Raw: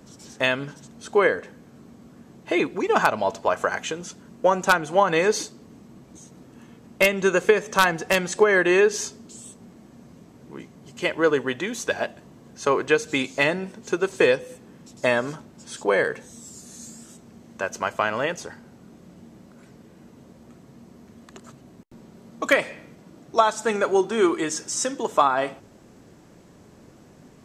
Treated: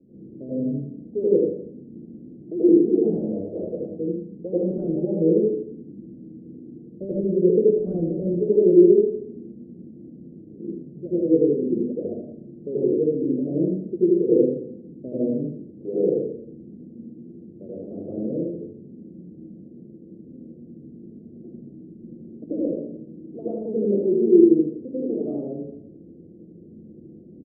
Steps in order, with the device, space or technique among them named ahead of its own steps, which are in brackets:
dynamic equaliser 770 Hz, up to −5 dB, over −36 dBFS, Q 3
next room (low-pass filter 690 Hz 24 dB per octave; convolution reverb RT60 0.60 s, pre-delay 78 ms, DRR −10 dB)
inverse Chebyshev low-pass filter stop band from 960 Hz, stop band 50 dB
spectral tilt +4.5 dB per octave
single-tap delay 79 ms −4.5 dB
level +4 dB

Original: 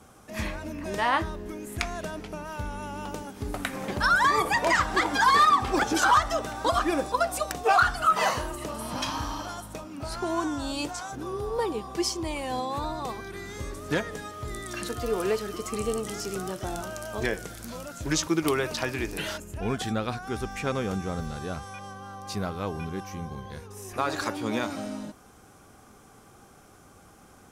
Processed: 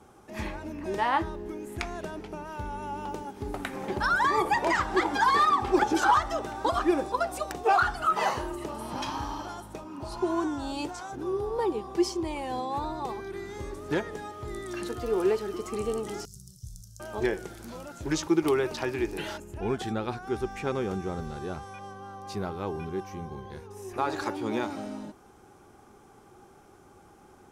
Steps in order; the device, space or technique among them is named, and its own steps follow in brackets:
inside a helmet (high-shelf EQ 4,700 Hz −5.5 dB; hollow resonant body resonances 370/840 Hz, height 10 dB, ringing for 45 ms)
0:09.87–0:10.32: healed spectral selection 910–2,700 Hz both
0:16.25–0:17.00: elliptic band-stop filter 130–5,300 Hz, stop band 40 dB
level −3.5 dB

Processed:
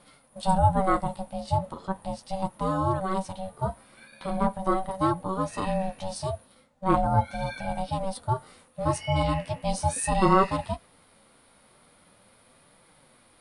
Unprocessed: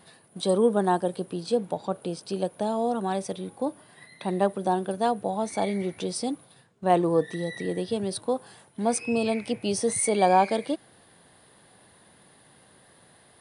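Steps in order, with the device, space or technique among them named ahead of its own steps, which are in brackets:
0:03.55–0:04.37: double-tracking delay 12 ms −5.5 dB
harmonic and percussive parts rebalanced percussive −7 dB
alien voice (ring modulation 380 Hz; flanger 0.39 Hz, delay 5.7 ms, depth 9.5 ms, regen −34%)
level +7 dB

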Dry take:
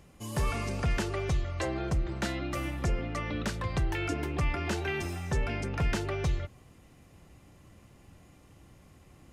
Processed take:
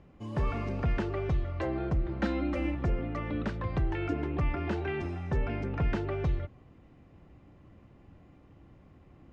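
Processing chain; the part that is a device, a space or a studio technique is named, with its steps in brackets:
phone in a pocket (low-pass filter 3,800 Hz 12 dB per octave; parametric band 290 Hz +3 dB 0.62 octaves; high-shelf EQ 2,200 Hz −10 dB)
0:02.19–0:02.75: comb filter 3.8 ms, depth 98%

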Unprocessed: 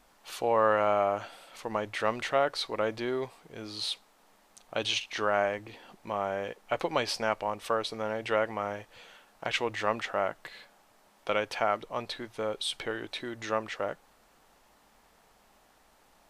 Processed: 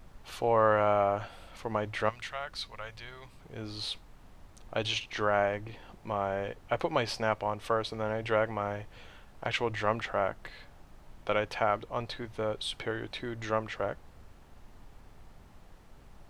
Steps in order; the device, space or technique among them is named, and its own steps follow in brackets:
0:02.09–0:03.40: guitar amp tone stack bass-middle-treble 10-0-10
car interior (parametric band 110 Hz +8 dB 0.77 octaves; high-shelf EQ 4,300 Hz −7 dB; brown noise bed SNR 18 dB)

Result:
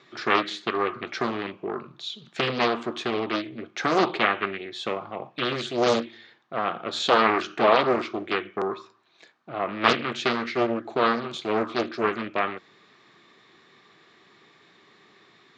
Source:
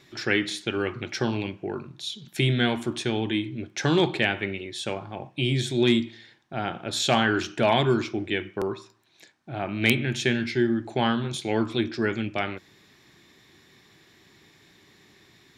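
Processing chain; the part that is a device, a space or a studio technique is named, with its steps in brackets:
low-pass filter 8,300 Hz
dynamic equaliser 130 Hz, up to −6 dB, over −39 dBFS, Q 1.6
full-range speaker at full volume (highs frequency-modulated by the lows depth 0.96 ms; loudspeaker in its box 190–6,400 Hz, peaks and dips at 290 Hz −3 dB, 460 Hz +4 dB, 690 Hz +3 dB, 1,200 Hz +10 dB, 5,500 Hz −6 dB)

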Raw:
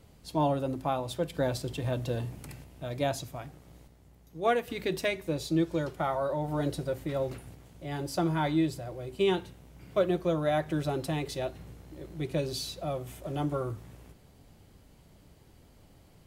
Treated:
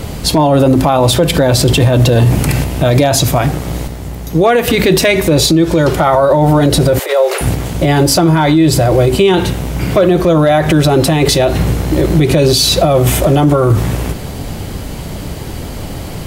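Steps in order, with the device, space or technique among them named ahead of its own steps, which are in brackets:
loud club master (downward compressor 2.5 to 1, threshold −32 dBFS, peak gain reduction 8 dB; hard clipping −24 dBFS, distortion −33 dB; boost into a limiter +35 dB)
0:06.99–0:07.41: Butterworth high-pass 400 Hz 72 dB per octave
level −1 dB

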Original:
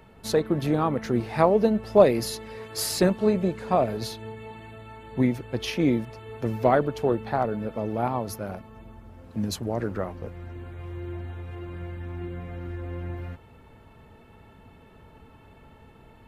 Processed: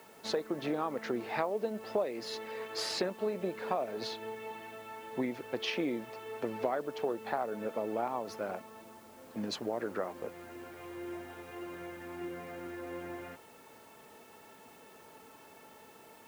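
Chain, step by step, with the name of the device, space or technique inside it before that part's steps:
baby monitor (band-pass filter 340–4,100 Hz; downward compressor, threshold −30 dBFS, peak gain reduction 17.5 dB; white noise bed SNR 25 dB)

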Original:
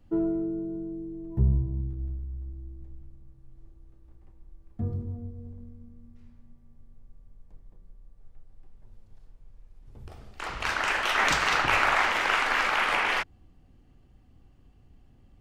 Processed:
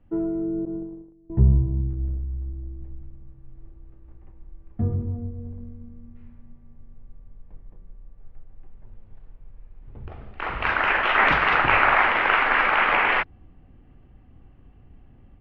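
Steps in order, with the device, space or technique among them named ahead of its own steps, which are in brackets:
0:00.65–0:01.30: noise gate −34 dBFS, range −23 dB
action camera in a waterproof case (low-pass filter 2,700 Hz 24 dB per octave; automatic gain control gain up to 6.5 dB; AAC 96 kbit/s 44,100 Hz)

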